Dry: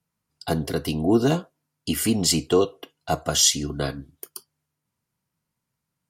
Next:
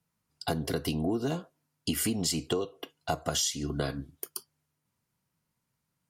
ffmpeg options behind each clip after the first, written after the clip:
ffmpeg -i in.wav -af "acompressor=threshold=-26dB:ratio=12" out.wav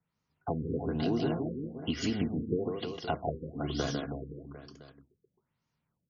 ffmpeg -i in.wav -af "aecho=1:1:150|322.5|520.9|749|1011:0.631|0.398|0.251|0.158|0.1,afftfilt=real='re*lt(b*sr/1024,500*pow(7000/500,0.5+0.5*sin(2*PI*1.1*pts/sr)))':imag='im*lt(b*sr/1024,500*pow(7000/500,0.5+0.5*sin(2*PI*1.1*pts/sr)))':win_size=1024:overlap=0.75,volume=-2dB" out.wav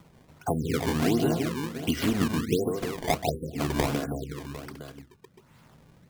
ffmpeg -i in.wav -filter_complex "[0:a]asplit=2[link_01][link_02];[link_02]acompressor=mode=upward:threshold=-34dB:ratio=2.5,volume=1dB[link_03];[link_01][link_03]amix=inputs=2:normalize=0,acrusher=samples=19:mix=1:aa=0.000001:lfo=1:lforange=30.4:lforate=1.4,volume=-1dB" out.wav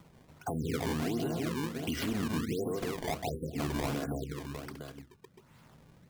ffmpeg -i in.wav -af "alimiter=limit=-23dB:level=0:latency=1:release=50,volume=-2.5dB" out.wav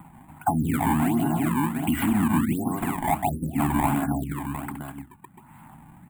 ffmpeg -i in.wav -af "firequalizer=gain_entry='entry(120,0);entry(200,5);entry(300,4);entry(460,-20);entry(810,12);entry(1200,2);entry(2300,0);entry(5500,-27);entry(7800,3);entry(14000,5)':delay=0.05:min_phase=1,volume=7.5dB" out.wav

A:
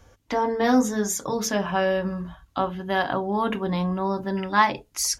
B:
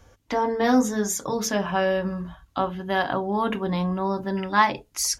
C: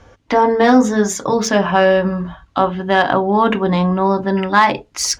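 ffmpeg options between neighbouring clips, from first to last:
ffmpeg -i in.wav -af anull out.wav
ffmpeg -i in.wav -af "lowshelf=frequency=120:gain=-6,adynamicsmooth=sensitivity=1:basefreq=4900,alimiter=level_in=12dB:limit=-1dB:release=50:level=0:latency=1,volume=-1dB" out.wav

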